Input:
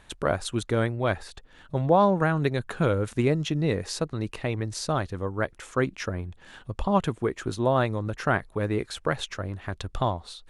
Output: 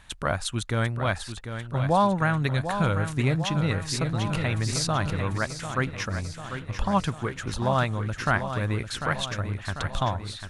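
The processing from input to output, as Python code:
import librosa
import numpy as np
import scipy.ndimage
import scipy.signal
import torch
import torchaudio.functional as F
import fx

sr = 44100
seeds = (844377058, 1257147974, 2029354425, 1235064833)

y = fx.peak_eq(x, sr, hz=400.0, db=-11.0, octaves=1.4)
y = fx.echo_feedback(y, sr, ms=745, feedback_pct=59, wet_db=-9.0)
y = fx.env_flatten(y, sr, amount_pct=50, at=(4.01, 5.38))
y = y * 10.0 ** (3.0 / 20.0)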